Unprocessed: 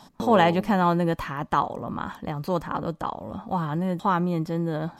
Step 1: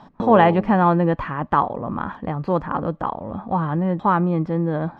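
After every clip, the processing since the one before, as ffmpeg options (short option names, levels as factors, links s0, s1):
-af "lowpass=2000,volume=1.78"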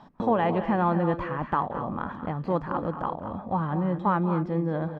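-filter_complex "[0:a]alimiter=limit=0.376:level=0:latency=1:release=196,asplit=2[s0][s1];[s1]aecho=0:1:184|222|242:0.158|0.266|0.188[s2];[s0][s2]amix=inputs=2:normalize=0,volume=0.531"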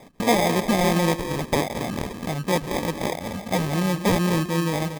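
-af "acrusher=samples=31:mix=1:aa=0.000001,volume=1.5"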